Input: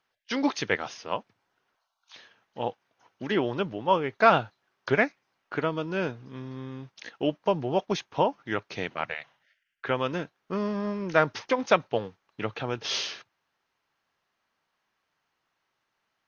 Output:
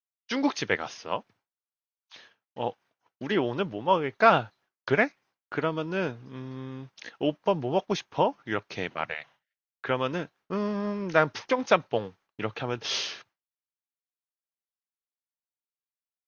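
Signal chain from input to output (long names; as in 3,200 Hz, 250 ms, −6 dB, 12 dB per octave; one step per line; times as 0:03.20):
downward expander −52 dBFS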